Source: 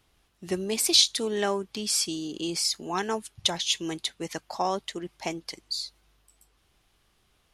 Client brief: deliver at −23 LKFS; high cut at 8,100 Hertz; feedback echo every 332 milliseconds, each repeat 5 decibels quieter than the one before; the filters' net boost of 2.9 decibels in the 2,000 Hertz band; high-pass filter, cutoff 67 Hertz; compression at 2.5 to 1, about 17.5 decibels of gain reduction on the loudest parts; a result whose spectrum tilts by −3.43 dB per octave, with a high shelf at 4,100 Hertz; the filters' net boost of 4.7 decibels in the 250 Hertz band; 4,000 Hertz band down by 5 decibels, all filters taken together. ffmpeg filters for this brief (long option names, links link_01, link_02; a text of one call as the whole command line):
ffmpeg -i in.wav -af "highpass=67,lowpass=8100,equalizer=frequency=250:width_type=o:gain=7,equalizer=frequency=2000:width_type=o:gain=6,equalizer=frequency=4000:width_type=o:gain=-3.5,highshelf=frequency=4100:gain=-6.5,acompressor=threshold=-48dB:ratio=2.5,aecho=1:1:332|664|996|1328|1660|1992|2324:0.562|0.315|0.176|0.0988|0.0553|0.031|0.0173,volume=20dB" out.wav